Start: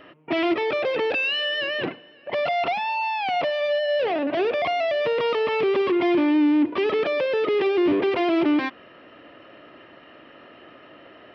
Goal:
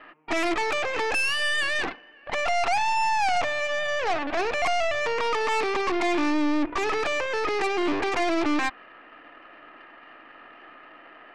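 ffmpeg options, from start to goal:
ffmpeg -i in.wav -af "highpass=300,equalizer=frequency=390:width_type=q:width=4:gain=-4,equalizer=frequency=560:width_type=q:width=4:gain=-7,equalizer=frequency=810:width_type=q:width=4:gain=6,equalizer=frequency=1200:width_type=q:width=4:gain=5,equalizer=frequency=1700:width_type=q:width=4:gain=5,equalizer=frequency=2400:width_type=q:width=4:gain=4,lowpass=frequency=2800:width=0.5412,lowpass=frequency=2800:width=1.3066,aeval=exprs='0.188*(cos(1*acos(clip(val(0)/0.188,-1,1)))-cos(1*PI/2))+0.0299*(cos(6*acos(clip(val(0)/0.188,-1,1)))-cos(6*PI/2))':channel_layout=same,volume=-2dB" out.wav

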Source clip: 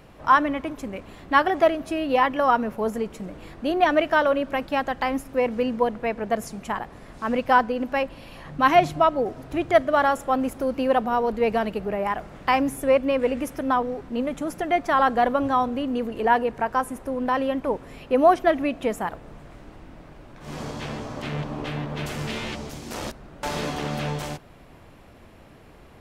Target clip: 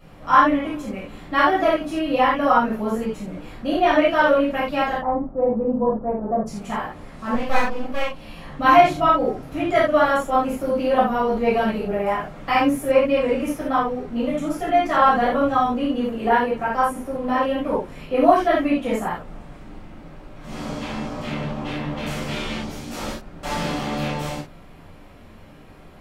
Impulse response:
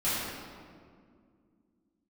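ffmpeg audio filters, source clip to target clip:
-filter_complex "[0:a]asplit=3[link_01][link_02][link_03];[link_01]afade=type=out:start_time=4.95:duration=0.02[link_04];[link_02]lowpass=frequency=1000:width=0.5412,lowpass=frequency=1000:width=1.3066,afade=type=in:start_time=4.95:duration=0.02,afade=type=out:start_time=6.46:duration=0.02[link_05];[link_03]afade=type=in:start_time=6.46:duration=0.02[link_06];[link_04][link_05][link_06]amix=inputs=3:normalize=0,asettb=1/sr,asplit=3[link_07][link_08][link_09];[link_07]atrim=end=7.344[link_10];[link_08]atrim=start=7.34:end=8.2,asetpts=PTS-STARTPTS,afade=type=in:duration=0.004:curve=qsin,afade=type=out:start_time=0.856:duration=0.004:curve=qsin,aeval=exprs='max(val(0),0)':channel_layout=same[link_11];[link_09]atrim=start=8.196[link_12];[link_10][link_11]acrossfade=duration=0.004:curve1=hsin:curve2=qsin[link_13];[link_13][link_12]acrossfade=duration=0.004:curve1=qsin:curve2=hsin[link_14];[1:a]atrim=start_sample=2205,atrim=end_sample=4410[link_15];[link_14][link_15]afir=irnorm=-1:irlink=0,volume=-5dB"

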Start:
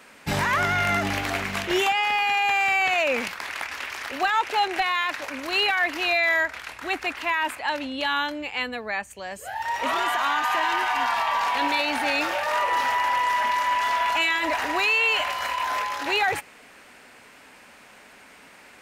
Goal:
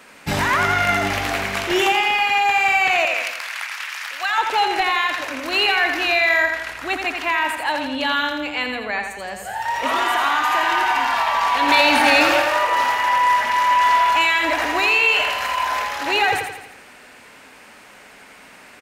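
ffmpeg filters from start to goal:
ffmpeg -i in.wav -filter_complex "[0:a]asettb=1/sr,asplit=3[link_01][link_02][link_03];[link_01]atrim=end=3.054[link_04];[link_02]atrim=start=3.05:end=4.38,asetpts=PTS-STARTPTS,afade=type=in:duration=0.004:curve=qsin,afade=type=out:start_time=1.326:duration=0.004:curve=qsin,highpass=1200[link_05];[link_03]atrim=start=4.376[link_06];[link_04][link_05]acrossfade=duration=0.004:curve1=hsin:curve2=qsin[link_07];[link_07][link_06]acrossfade=duration=0.004:curve1=qsin:curve2=hsin,asettb=1/sr,asplit=3[link_08][link_09][link_10];[link_08]atrim=end=11.684[link_11];[link_09]atrim=start=11.68:end=12.42,asetpts=PTS-STARTPTS,afade=type=in:duration=0.004:curve=qsin,afade=type=out:start_time=0.736:duration=0.004:curve=qsin,acontrast=37[link_12];[link_10]atrim=start=12.416[link_13];[link_11][link_12]acrossfade=duration=0.004:curve1=hsin:curve2=qsin[link_14];[link_14][link_13]acrossfade=duration=0.004:curve1=qsin:curve2=hsin,aecho=1:1:84|168|252|336|420|504:0.501|0.261|0.136|0.0705|0.0366|0.0191,volume=3.5dB" out.wav

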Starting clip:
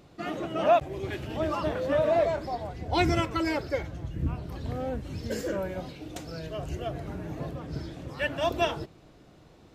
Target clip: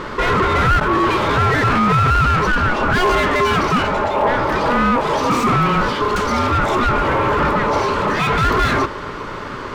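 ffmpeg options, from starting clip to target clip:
ffmpeg -i in.wav -filter_complex "[0:a]asplit=2[link_01][link_02];[link_02]highpass=frequency=720:poles=1,volume=38dB,asoftclip=type=tanh:threshold=-11dB[link_03];[link_01][link_03]amix=inputs=2:normalize=0,lowpass=frequency=1100:poles=1,volume=-6dB,aeval=exprs='val(0)*sin(2*PI*730*n/s)':channel_layout=same,volume=7dB" out.wav

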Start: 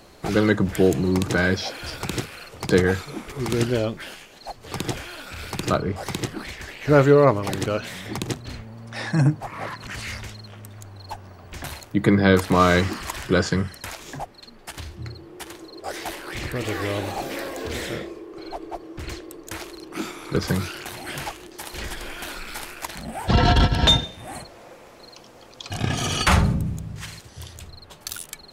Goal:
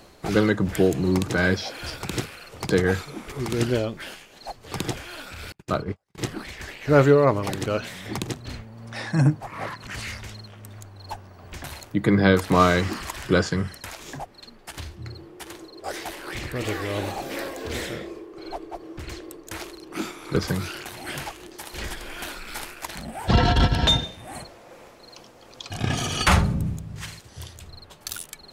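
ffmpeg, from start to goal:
ffmpeg -i in.wav -filter_complex "[0:a]asettb=1/sr,asplit=3[link_01][link_02][link_03];[link_01]atrim=end=5.524[link_04];[link_02]atrim=start=5.52:end=6.18,asetpts=PTS-STARTPTS,afade=type=in:duration=0.004:curve=qsin,afade=type=out:start_time=0.656:duration=0.004:curve=qsin,agate=range=-46dB:threshold=-23dB:ratio=16:detection=peak[link_05];[link_03]atrim=start=6.176[link_06];[link_04][link_05]acrossfade=duration=0.004:curve1=hsin:curve2=qsin[link_07];[link_07][link_06]acrossfade=duration=0.004:curve1=qsin:curve2=hsin,tremolo=f=2.7:d=0.31" out.wav

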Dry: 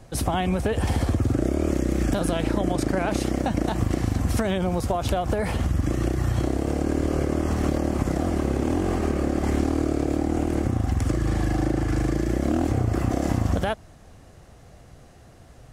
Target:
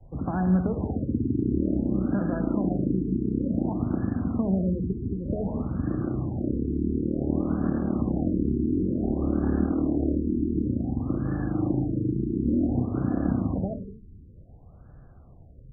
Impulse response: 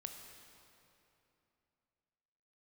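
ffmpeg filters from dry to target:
-filter_complex "[0:a]equalizer=frequency=640:width_type=o:width=2.8:gain=-9,acrossover=split=140|3000[link_01][link_02][link_03];[link_01]acompressor=threshold=-36dB:ratio=6[link_04];[link_04][link_02][link_03]amix=inputs=3:normalize=0,adynamicequalizer=threshold=0.00631:dfrequency=230:dqfactor=1.3:tfrequency=230:tqfactor=1.3:attack=5:release=100:ratio=0.375:range=3:mode=boostabove:tftype=bell[link_05];[1:a]atrim=start_sample=2205,afade=type=out:start_time=0.31:duration=0.01,atrim=end_sample=14112[link_06];[link_05][link_06]afir=irnorm=-1:irlink=0,afftfilt=real='re*lt(b*sr/1024,430*pow(1800/430,0.5+0.5*sin(2*PI*0.55*pts/sr)))':imag='im*lt(b*sr/1024,430*pow(1800/430,0.5+0.5*sin(2*PI*0.55*pts/sr)))':win_size=1024:overlap=0.75,volume=5dB"

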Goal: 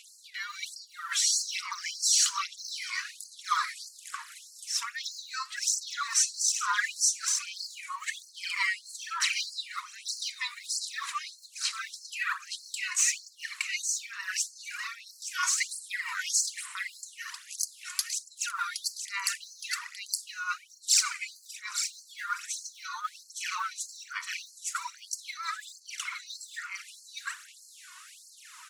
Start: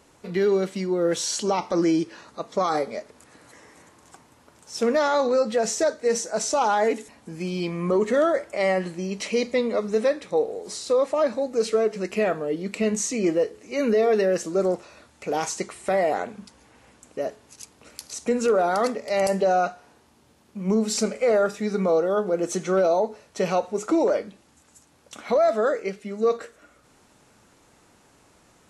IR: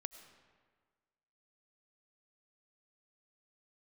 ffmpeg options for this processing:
-af "aphaser=in_gain=1:out_gain=1:delay=2.8:decay=0.67:speed=1.2:type=sinusoidal,aecho=1:1:867:0.562,areverse,acompressor=threshold=-27dB:ratio=4,areverse,afftfilt=real='re*gte(b*sr/1024,900*pow(4200/900,0.5+0.5*sin(2*PI*1.6*pts/sr)))':imag='im*gte(b*sr/1024,900*pow(4200/900,0.5+0.5*sin(2*PI*1.6*pts/sr)))':win_size=1024:overlap=0.75,volume=8.5dB"

